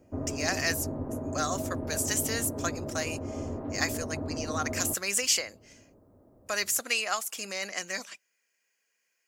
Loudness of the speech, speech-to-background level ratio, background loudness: -30.5 LUFS, 5.5 dB, -36.0 LUFS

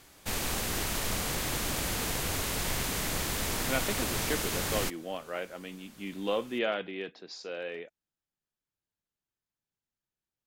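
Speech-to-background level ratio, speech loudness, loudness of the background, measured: -5.0 dB, -36.0 LUFS, -31.0 LUFS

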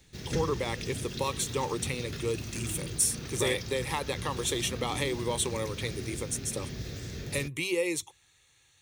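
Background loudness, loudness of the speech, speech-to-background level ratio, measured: -38.5 LUFS, -32.0 LUFS, 6.5 dB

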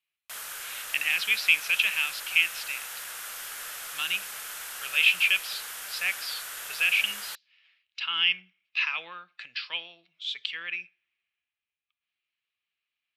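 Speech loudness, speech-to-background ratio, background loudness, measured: -26.0 LUFS, 10.5 dB, -36.5 LUFS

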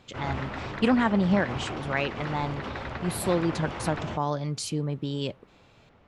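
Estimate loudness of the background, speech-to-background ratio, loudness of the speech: -35.5 LUFS, 7.0 dB, -28.5 LUFS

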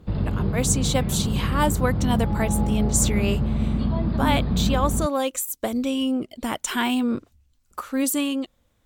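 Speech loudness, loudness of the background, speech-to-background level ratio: -25.5 LUFS, -24.5 LUFS, -1.0 dB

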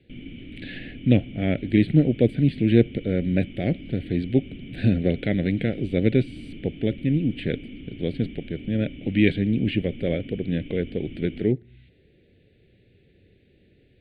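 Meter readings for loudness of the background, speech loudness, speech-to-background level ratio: -40.5 LUFS, -24.5 LUFS, 16.0 dB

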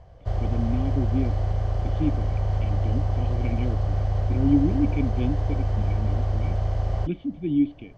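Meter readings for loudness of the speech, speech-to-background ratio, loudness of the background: -29.0 LUFS, -2.5 dB, -26.5 LUFS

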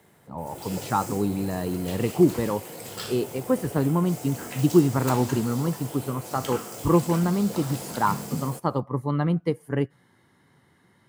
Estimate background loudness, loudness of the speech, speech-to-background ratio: -36.0 LUFS, -26.0 LUFS, 10.0 dB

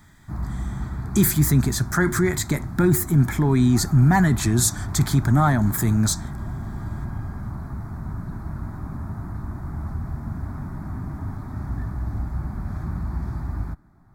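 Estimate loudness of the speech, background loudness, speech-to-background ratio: -20.0 LUFS, -32.0 LUFS, 12.0 dB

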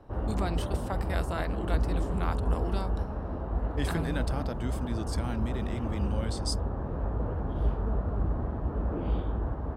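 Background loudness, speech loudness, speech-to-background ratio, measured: -32.5 LUFS, -36.5 LUFS, -4.0 dB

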